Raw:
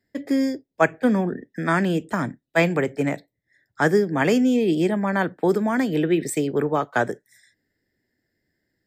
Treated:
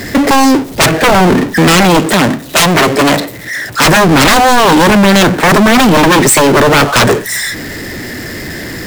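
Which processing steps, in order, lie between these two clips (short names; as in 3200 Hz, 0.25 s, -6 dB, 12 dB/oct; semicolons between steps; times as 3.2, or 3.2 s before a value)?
sine folder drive 18 dB, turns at -4.5 dBFS; power-law curve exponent 0.35; 2–3.84 low shelf 130 Hz -11 dB; gain -1 dB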